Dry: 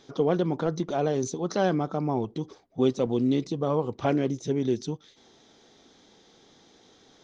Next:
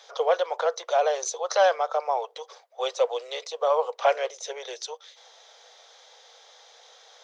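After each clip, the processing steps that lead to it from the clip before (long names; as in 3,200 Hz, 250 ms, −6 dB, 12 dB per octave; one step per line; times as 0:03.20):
Butterworth high-pass 490 Hz 72 dB per octave
level +7 dB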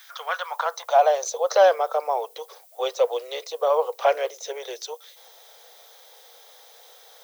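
background noise violet −54 dBFS
high-pass filter sweep 1,600 Hz → 280 Hz, 0:00.13–0:02.05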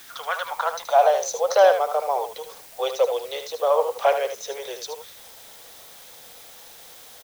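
in parallel at −10 dB: bit-depth reduction 6 bits, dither triangular
on the sum: single-tap delay 76 ms −8.5 dB
level −2 dB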